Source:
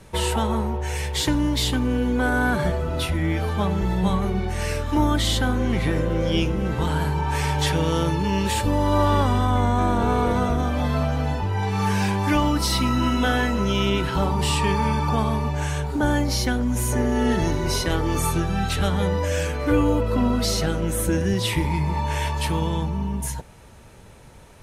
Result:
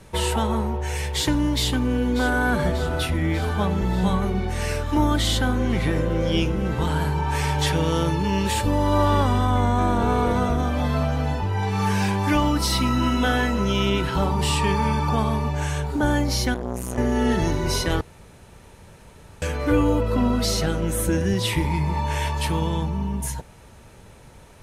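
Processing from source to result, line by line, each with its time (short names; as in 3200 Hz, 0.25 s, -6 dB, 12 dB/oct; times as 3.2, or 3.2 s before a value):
1.53–2.47 echo throw 0.59 s, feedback 70%, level -12 dB
16.54–16.98 core saturation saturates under 560 Hz
18.01–19.42 room tone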